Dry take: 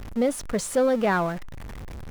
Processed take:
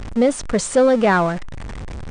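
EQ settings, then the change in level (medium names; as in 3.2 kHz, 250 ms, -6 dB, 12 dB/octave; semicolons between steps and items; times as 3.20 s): brick-wall FIR low-pass 9.6 kHz; +7.0 dB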